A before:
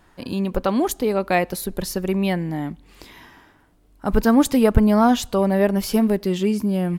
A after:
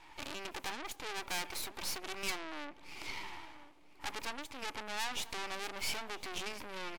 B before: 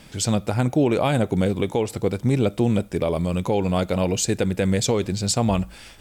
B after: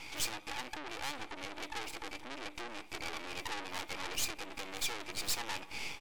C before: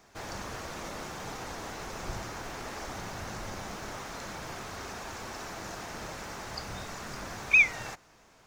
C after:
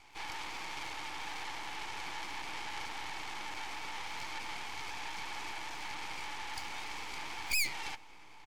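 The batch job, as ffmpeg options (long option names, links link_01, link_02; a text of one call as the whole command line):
ffmpeg -i in.wav -filter_complex "[0:a]asplit=3[link_01][link_02][link_03];[link_01]bandpass=frequency=300:width_type=q:width=8,volume=0dB[link_04];[link_02]bandpass=frequency=870:width_type=q:width=8,volume=-6dB[link_05];[link_03]bandpass=frequency=2240:width_type=q:width=8,volume=-9dB[link_06];[link_04][link_05][link_06]amix=inputs=3:normalize=0,equalizer=frequency=530:width_type=o:width=0.78:gain=11.5,acompressor=threshold=-35dB:ratio=5,asplit=2[link_07][link_08];[link_08]highpass=frequency=720:poles=1,volume=28dB,asoftclip=type=tanh:threshold=-25.5dB[link_09];[link_07][link_09]amix=inputs=2:normalize=0,lowpass=frequency=3600:poles=1,volume=-6dB,aderivative,aeval=exprs='max(val(0),0)':channel_layout=same,asplit=2[link_10][link_11];[link_11]adelay=995,lowpass=frequency=1400:poles=1,volume=-15dB,asplit=2[link_12][link_13];[link_13]adelay=995,lowpass=frequency=1400:poles=1,volume=0.41,asplit=2[link_14][link_15];[link_15]adelay=995,lowpass=frequency=1400:poles=1,volume=0.41,asplit=2[link_16][link_17];[link_17]adelay=995,lowpass=frequency=1400:poles=1,volume=0.41[link_18];[link_10][link_12][link_14][link_16][link_18]amix=inputs=5:normalize=0,volume=14.5dB" -ar 48000 -c:a wmav2 -b:a 128k out.wma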